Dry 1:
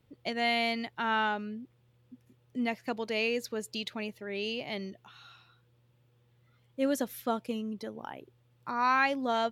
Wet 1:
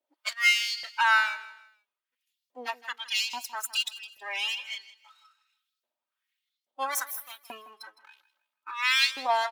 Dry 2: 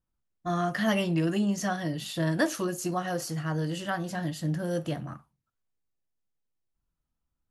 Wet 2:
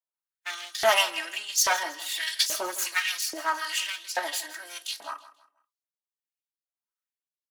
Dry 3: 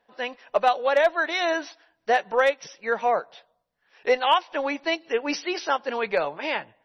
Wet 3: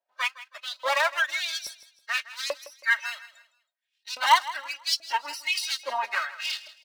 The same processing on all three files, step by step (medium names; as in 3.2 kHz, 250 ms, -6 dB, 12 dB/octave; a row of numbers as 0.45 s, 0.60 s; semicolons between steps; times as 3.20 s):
comb filter that takes the minimum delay 3.2 ms; spectral noise reduction 17 dB; tilt EQ +2 dB/octave; in parallel at -0.5 dB: peak limiter -18.5 dBFS; on the sum: harmonic tremolo 1.5 Hz, depth 70%, crossover 740 Hz; LFO high-pass saw up 1.2 Hz 570–5200 Hz; feedback delay 161 ms, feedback 32%, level -16.5 dB; normalise loudness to -27 LUFS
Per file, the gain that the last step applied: +1.0 dB, +2.5 dB, -4.0 dB